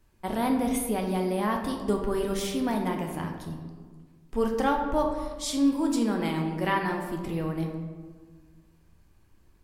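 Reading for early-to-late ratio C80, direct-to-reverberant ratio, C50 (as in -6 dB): 7.0 dB, 2.0 dB, 5.0 dB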